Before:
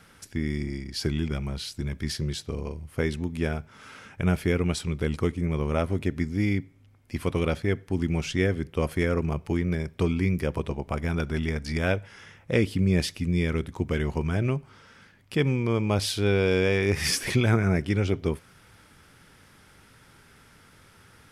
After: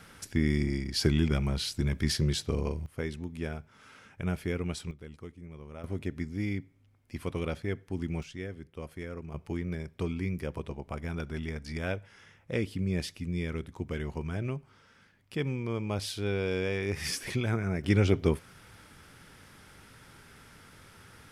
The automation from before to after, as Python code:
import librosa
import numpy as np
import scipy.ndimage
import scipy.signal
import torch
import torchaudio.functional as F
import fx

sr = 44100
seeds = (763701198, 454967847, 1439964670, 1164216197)

y = fx.gain(x, sr, db=fx.steps((0.0, 2.0), (2.86, -8.0), (4.91, -19.0), (5.84, -7.5), (8.23, -15.0), (9.34, -8.0), (17.84, 1.0)))